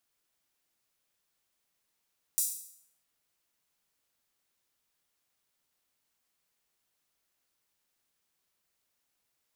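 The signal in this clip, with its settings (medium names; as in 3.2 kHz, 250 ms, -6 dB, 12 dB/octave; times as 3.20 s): open hi-hat length 0.66 s, high-pass 7.7 kHz, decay 0.66 s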